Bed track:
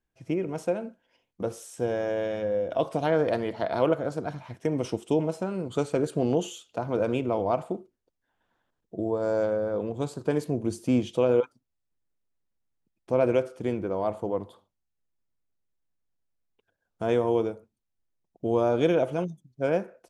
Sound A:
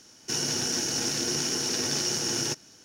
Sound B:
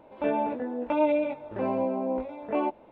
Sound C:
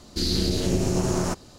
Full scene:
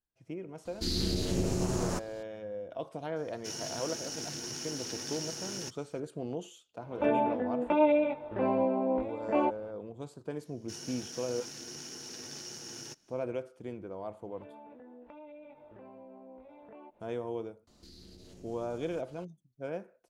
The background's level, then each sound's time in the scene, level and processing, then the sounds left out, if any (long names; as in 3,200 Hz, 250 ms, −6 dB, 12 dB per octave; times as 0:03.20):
bed track −12.5 dB
0:00.65: mix in C −7 dB
0:03.16: mix in A −11.5 dB
0:06.80: mix in B −0.5 dB
0:10.40: mix in A −16 dB
0:14.20: mix in B −11.5 dB + downward compressor 4 to 1, threshold −38 dBFS
0:17.67: mix in C −15 dB + downward compressor 3 to 1, threshold −39 dBFS